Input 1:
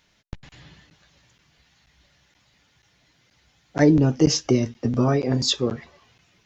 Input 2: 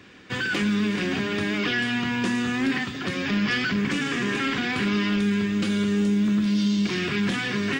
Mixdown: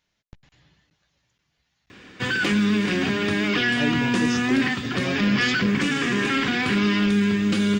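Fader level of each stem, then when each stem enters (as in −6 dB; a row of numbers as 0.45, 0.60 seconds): −11.5, +3.0 decibels; 0.00, 1.90 seconds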